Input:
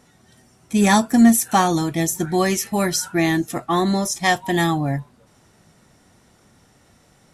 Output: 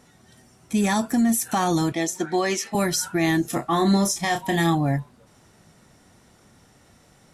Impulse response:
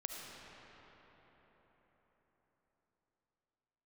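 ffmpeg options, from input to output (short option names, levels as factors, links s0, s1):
-filter_complex "[0:a]asettb=1/sr,asplit=3[s0][s1][s2];[s0]atrim=end=1.924[s3];[s1]atrim=start=1.92:end=2.75,asetpts=PTS-STARTPTS,afade=t=in:d=0.004:c=qsin,afade=t=out:st=0.826:d=0.004:c=qsin,acrossover=split=240 7300:gain=0.112 1 0.158[s4][s5][s6];[s4][s5][s6]amix=inputs=3:normalize=0[s7];[s2]atrim=start=2.746[s8];[s3][s7]acrossfade=d=0.004:c1=hsin:c2=qsin[s9];[s9][s8]acrossfade=d=0.004:c1=qsin:c2=hsin,alimiter=limit=0.211:level=0:latency=1:release=68,asettb=1/sr,asplit=3[s10][s11][s12];[s10]atrim=end=3.424[s13];[s11]atrim=start=3.42:end=4.75,asetpts=PTS-STARTPTS,afade=t=in:d=0.004:c=qsin,afade=t=out:st=1.326:d=0.004:c=qsin,asplit=2[s14][s15];[s15]adelay=30,volume=0.447[s16];[s14][s16]amix=inputs=2:normalize=0,atrim=end_sample=58653[s17];[s12]atrim=start=4.746[s18];[s13][s17]acrossfade=d=0.004:c1=hsin:c2=qsin[s19];[s19][s18]acrossfade=d=0.004:c1=qsin:c2=hsin"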